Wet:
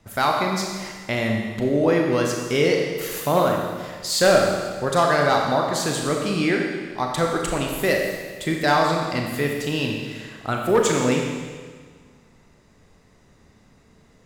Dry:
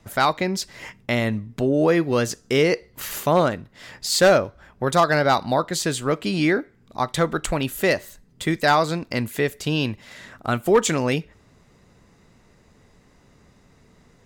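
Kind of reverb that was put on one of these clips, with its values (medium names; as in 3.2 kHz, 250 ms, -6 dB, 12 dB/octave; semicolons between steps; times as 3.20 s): Schroeder reverb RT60 1.6 s, combs from 28 ms, DRR 0.5 dB; trim -2.5 dB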